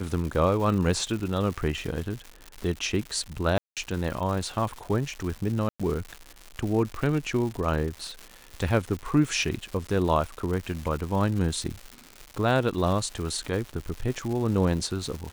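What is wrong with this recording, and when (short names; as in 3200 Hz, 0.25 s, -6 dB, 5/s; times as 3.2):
crackle 250/s -32 dBFS
3.58–3.77 gap 0.187 s
5.69–5.8 gap 0.106 s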